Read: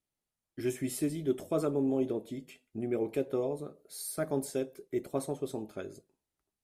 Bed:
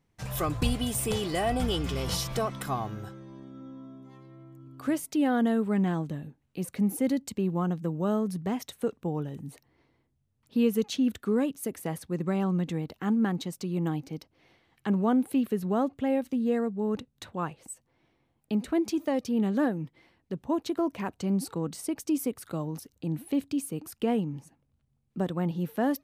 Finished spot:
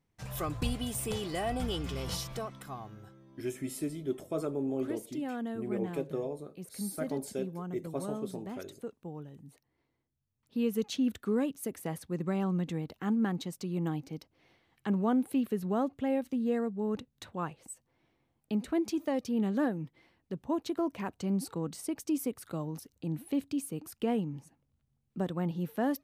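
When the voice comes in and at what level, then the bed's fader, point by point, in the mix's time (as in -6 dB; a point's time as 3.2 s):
2.80 s, -3.5 dB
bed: 2.14 s -5.5 dB
2.62 s -11.5 dB
10.1 s -11.5 dB
10.9 s -3.5 dB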